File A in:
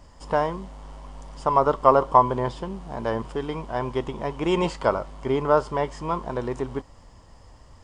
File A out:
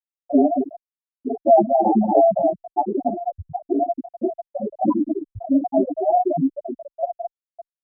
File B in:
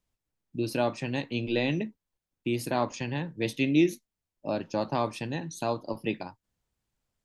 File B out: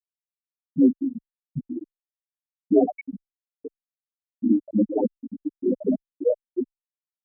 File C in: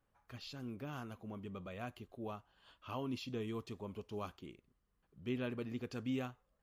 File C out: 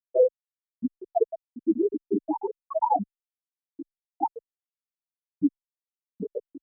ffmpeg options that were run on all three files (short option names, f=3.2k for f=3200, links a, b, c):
-filter_complex "[0:a]aeval=exprs='val(0)+0.5*0.168*sgn(val(0))':c=same,asplit=2[a][b];[b]aecho=0:1:218:0.376[c];[a][c]amix=inputs=2:normalize=0,afftdn=nr=13:nf=-27,asplit=2[d][e];[e]aecho=0:1:907:0.355[f];[d][f]amix=inputs=2:normalize=0,asplit=2[g][h];[h]highpass=f=720:p=1,volume=26dB,asoftclip=type=tanh:threshold=0dB[i];[g][i]amix=inputs=2:normalize=0,lowpass=f=1.3k:p=1,volume=-6dB,highpass=f=550:t=q:w=0.5412,highpass=f=550:t=q:w=1.307,lowpass=f=3.4k:t=q:w=0.5176,lowpass=f=3.4k:t=q:w=0.7071,lowpass=f=3.4k:t=q:w=1.932,afreqshift=-330,afftfilt=real='re*gte(hypot(re,im),1.58)':imag='im*gte(hypot(re,im),1.58)':win_size=1024:overlap=0.75,asplit=2[j][k];[k]adelay=7.7,afreqshift=-0.34[l];[j][l]amix=inputs=2:normalize=1"